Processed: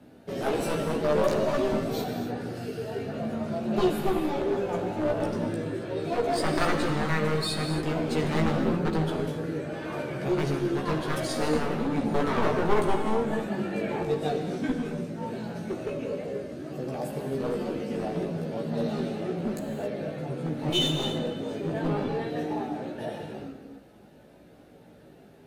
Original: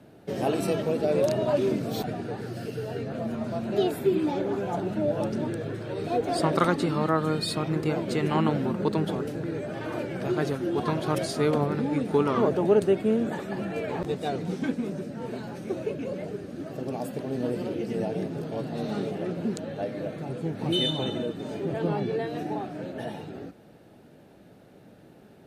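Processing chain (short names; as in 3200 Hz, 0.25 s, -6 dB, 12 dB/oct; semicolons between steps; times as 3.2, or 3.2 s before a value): one-sided fold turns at -22 dBFS; non-linear reverb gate 0.3 s flat, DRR 4 dB; chorus voices 4, 0.1 Hz, delay 16 ms, depth 3.8 ms; gain +2 dB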